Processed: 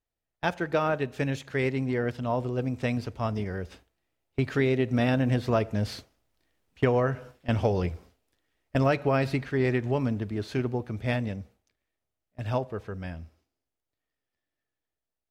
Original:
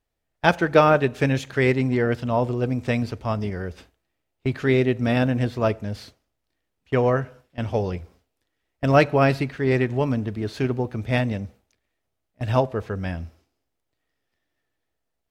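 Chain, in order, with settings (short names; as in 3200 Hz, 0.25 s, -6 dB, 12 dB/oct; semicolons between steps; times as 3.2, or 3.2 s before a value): Doppler pass-by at 6.79, 6 m/s, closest 8.9 m; compressor 5:1, threshold -25 dBFS, peak gain reduction 9 dB; gain +4.5 dB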